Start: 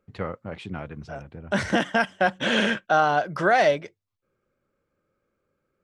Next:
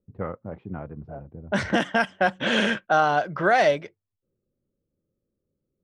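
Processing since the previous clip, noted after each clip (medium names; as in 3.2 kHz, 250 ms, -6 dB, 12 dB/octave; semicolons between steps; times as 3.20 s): level-controlled noise filter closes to 330 Hz, open at -18.5 dBFS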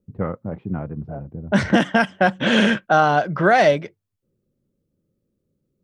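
peaking EQ 170 Hz +6 dB 1.8 oct; trim +3.5 dB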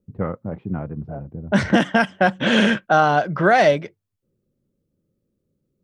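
no audible change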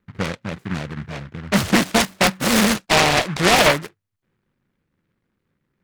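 delay time shaken by noise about 1.4 kHz, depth 0.24 ms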